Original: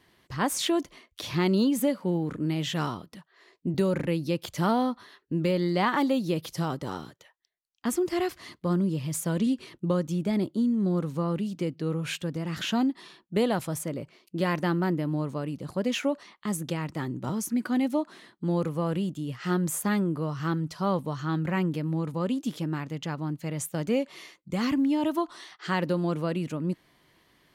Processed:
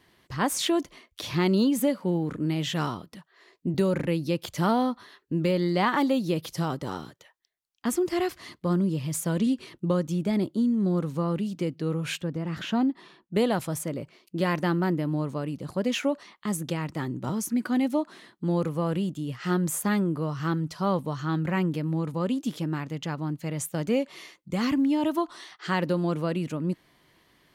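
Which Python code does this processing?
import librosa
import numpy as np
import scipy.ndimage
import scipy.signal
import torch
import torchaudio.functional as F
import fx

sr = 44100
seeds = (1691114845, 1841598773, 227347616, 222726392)

y = fx.high_shelf(x, sr, hz=3300.0, db=-11.5, at=(12.21, 13.34))
y = y * librosa.db_to_amplitude(1.0)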